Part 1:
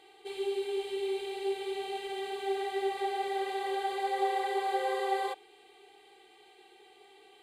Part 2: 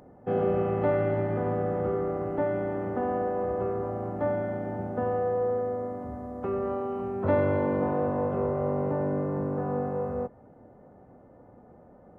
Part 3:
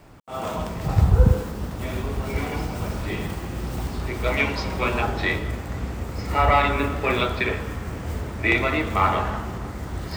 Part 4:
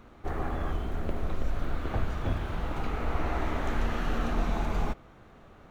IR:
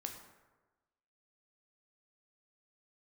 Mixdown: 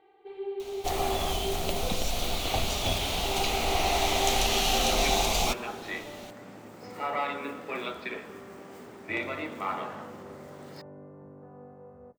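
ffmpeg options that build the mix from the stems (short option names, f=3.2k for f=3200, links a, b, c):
-filter_complex "[0:a]lowpass=1.5k,volume=-2dB,asplit=3[a][b][c];[a]atrim=end=1.83,asetpts=PTS-STARTPTS,afade=t=out:st=1.826:d=0.004:c=hsin[d];[b]atrim=start=1.83:end=3.23,asetpts=PTS-STARTPTS,volume=0[e];[c]atrim=start=3.23,asetpts=PTS-STARTPTS,afade=t=in:d=0.004:c=hsin[f];[d][e][f]concat=n=3:v=0:a=1[g];[1:a]adelay=1850,volume=-19dB[h];[2:a]highpass=f=190:w=0.5412,highpass=f=190:w=1.3066,adelay=650,volume=-12dB[i];[3:a]aexciter=amount=15.1:drive=5.8:freq=2.5k,equalizer=f=730:t=o:w=0.78:g=13,adelay=600,volume=-3dB[j];[g][h][i][j]amix=inputs=4:normalize=0"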